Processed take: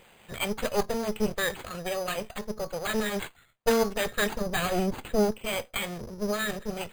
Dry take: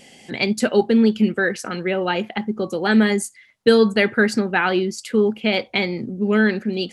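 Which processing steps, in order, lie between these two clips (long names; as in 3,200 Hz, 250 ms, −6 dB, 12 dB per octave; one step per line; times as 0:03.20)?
lower of the sound and its delayed copy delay 1.7 ms
bad sample-rate conversion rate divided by 8×, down none, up hold
0:04.41–0:05.31: low-shelf EQ 420 Hz +7.5 dB
level −7 dB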